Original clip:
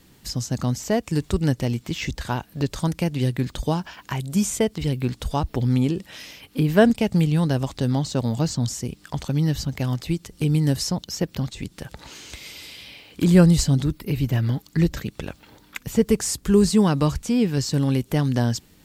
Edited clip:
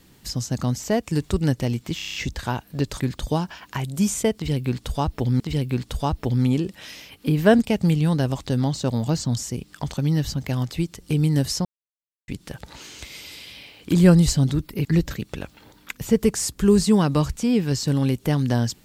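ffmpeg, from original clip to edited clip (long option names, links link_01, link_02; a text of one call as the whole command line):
ffmpeg -i in.wav -filter_complex "[0:a]asplit=12[link_01][link_02][link_03][link_04][link_05][link_06][link_07][link_08][link_09][link_10][link_11][link_12];[link_01]atrim=end=1.992[link_13];[link_02]atrim=start=1.958:end=1.992[link_14];[link_03]atrim=start=1.958:end=1.992[link_15];[link_04]atrim=start=1.958:end=1.992[link_16];[link_05]atrim=start=1.958:end=1.992[link_17];[link_06]atrim=start=1.958:end=1.992[link_18];[link_07]atrim=start=1.958:end=2.822[link_19];[link_08]atrim=start=3.358:end=5.762[link_20];[link_09]atrim=start=4.708:end=10.96,asetpts=PTS-STARTPTS,afade=type=out:start_time=6.248:duration=0.004:curve=hsin[link_21];[link_10]atrim=start=10.96:end=11.59,asetpts=PTS-STARTPTS,volume=0[link_22];[link_11]atrim=start=11.59:end=14.162,asetpts=PTS-STARTPTS,afade=type=in:duration=0.004:curve=hsin[link_23];[link_12]atrim=start=14.708[link_24];[link_13][link_14]acrossfade=duration=0.004:curve1=hsin:curve2=hsin[link_25];[link_25][link_15]acrossfade=duration=0.004:curve1=hsin:curve2=hsin[link_26];[link_26][link_16]acrossfade=duration=0.004:curve1=hsin:curve2=hsin[link_27];[link_27][link_17]acrossfade=duration=0.004:curve1=hsin:curve2=hsin[link_28];[link_28][link_18]acrossfade=duration=0.004:curve1=hsin:curve2=hsin[link_29];[link_29][link_19]acrossfade=duration=0.004:curve1=hsin:curve2=hsin[link_30];[link_30][link_20]acrossfade=duration=0.004:curve1=hsin:curve2=hsin[link_31];[link_21][link_22][link_23]concat=n=3:v=0:a=1[link_32];[link_31][link_32]acrossfade=duration=0.004:curve1=hsin:curve2=hsin[link_33];[link_33][link_24]acrossfade=duration=0.004:curve1=hsin:curve2=hsin" out.wav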